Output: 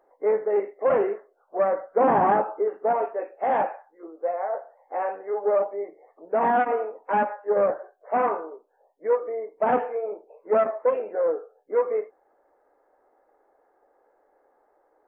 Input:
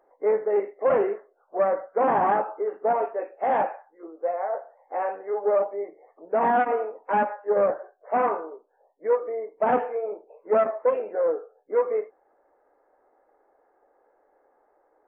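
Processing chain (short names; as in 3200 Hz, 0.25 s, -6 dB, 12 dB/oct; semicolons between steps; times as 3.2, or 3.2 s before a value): 1.9–2.68 low shelf 440 Hz +6.5 dB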